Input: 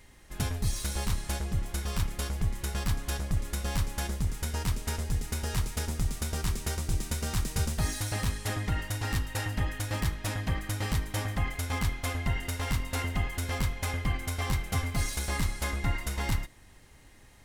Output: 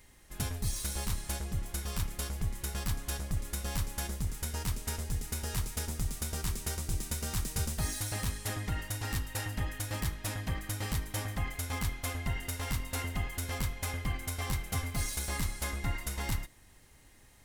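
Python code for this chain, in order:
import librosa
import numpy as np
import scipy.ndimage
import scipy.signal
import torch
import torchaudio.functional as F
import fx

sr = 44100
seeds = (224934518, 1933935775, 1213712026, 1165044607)

y = fx.high_shelf(x, sr, hz=7500.0, db=8.0)
y = y * librosa.db_to_amplitude(-4.5)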